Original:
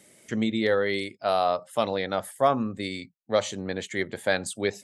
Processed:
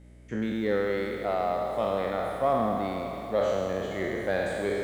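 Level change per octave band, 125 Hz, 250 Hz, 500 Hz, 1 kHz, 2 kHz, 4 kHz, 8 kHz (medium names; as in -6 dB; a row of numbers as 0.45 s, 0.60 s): -1.0 dB, -2.0 dB, -0.5 dB, -1.5 dB, -4.0 dB, -9.5 dB, under -10 dB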